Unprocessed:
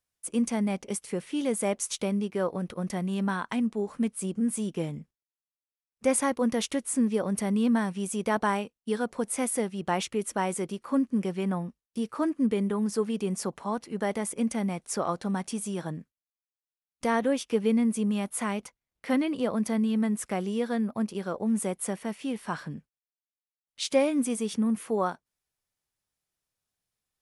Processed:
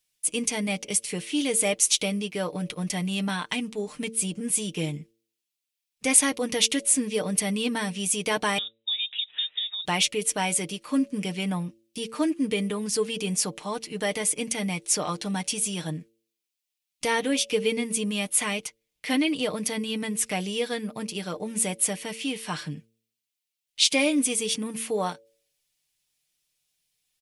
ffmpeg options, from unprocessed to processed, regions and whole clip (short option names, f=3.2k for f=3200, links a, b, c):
-filter_complex "[0:a]asettb=1/sr,asplit=3[a][b][c];[a]atrim=end=8.584[d];[b]atrim=start=8.58:end=9.85,asetpts=PTS-STARTPTS,afade=t=in:d=0.004:c=qsin,afade=t=out:st=1.266:d=0.004:c=qsin,acompressor=threshold=-39dB:ratio=5:attack=3.2:release=140:knee=1:detection=peak,lowpass=f=3.3k:t=q:w=0.5098,lowpass=f=3.3k:t=q:w=0.6013,lowpass=f=3.3k:t=q:w=0.9,lowpass=f=3.3k:t=q:w=2.563,afreqshift=-3900[e];[c]atrim=start=9.846[f];[d][e]acrossfade=d=0.004:c1=hsin:c2=qsin[g];[g][f]acrossfade=d=0.004:c1=qsin:c2=hsin,highshelf=f=1.9k:t=q:w=1.5:g=9.5,aecho=1:1:6.6:0.57,bandreject=f=112.6:t=h:w=4,bandreject=f=225.2:t=h:w=4,bandreject=f=337.8:t=h:w=4,bandreject=f=450.4:t=h:w=4,bandreject=f=563:t=h:w=4"